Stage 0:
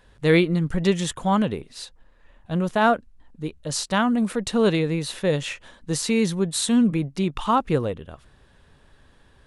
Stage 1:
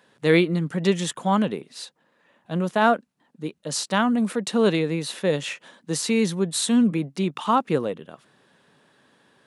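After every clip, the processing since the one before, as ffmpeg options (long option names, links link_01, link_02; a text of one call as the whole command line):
ffmpeg -i in.wav -af "highpass=frequency=160:width=0.5412,highpass=frequency=160:width=1.3066" out.wav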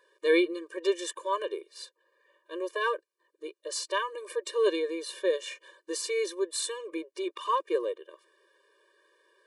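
ffmpeg -i in.wav -af "afftfilt=real='re*eq(mod(floor(b*sr/1024/310),2),1)':imag='im*eq(mod(floor(b*sr/1024/310),2),1)':win_size=1024:overlap=0.75,volume=-3.5dB" out.wav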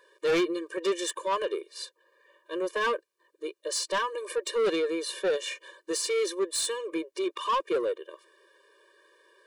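ffmpeg -i in.wav -af "asoftclip=type=tanh:threshold=-26.5dB,volume=5dB" out.wav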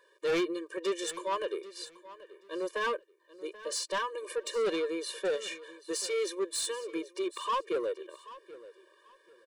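ffmpeg -i in.wav -af "aecho=1:1:783|1566:0.133|0.032,volume=-4dB" out.wav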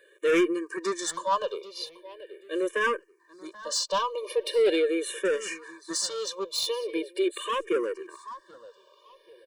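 ffmpeg -i in.wav -filter_complex "[0:a]asplit=2[link_01][link_02];[link_02]afreqshift=-0.41[link_03];[link_01][link_03]amix=inputs=2:normalize=1,volume=8dB" out.wav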